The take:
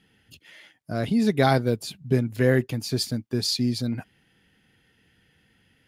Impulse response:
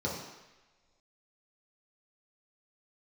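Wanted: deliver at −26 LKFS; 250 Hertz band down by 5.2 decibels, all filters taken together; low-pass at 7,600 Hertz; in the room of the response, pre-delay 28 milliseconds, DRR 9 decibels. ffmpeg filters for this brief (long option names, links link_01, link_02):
-filter_complex "[0:a]lowpass=7600,equalizer=frequency=250:width_type=o:gain=-6,asplit=2[link_01][link_02];[1:a]atrim=start_sample=2205,adelay=28[link_03];[link_02][link_03]afir=irnorm=-1:irlink=0,volume=-15.5dB[link_04];[link_01][link_04]amix=inputs=2:normalize=0,volume=-0.5dB"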